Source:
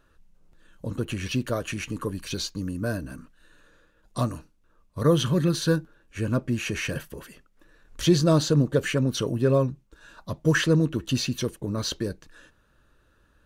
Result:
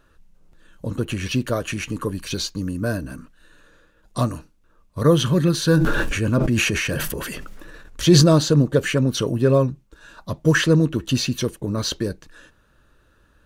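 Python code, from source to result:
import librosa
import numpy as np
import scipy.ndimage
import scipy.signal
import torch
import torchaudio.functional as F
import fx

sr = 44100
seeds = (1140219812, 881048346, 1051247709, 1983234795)

y = fx.sustainer(x, sr, db_per_s=21.0, at=(5.56, 8.35))
y = y * librosa.db_to_amplitude(4.5)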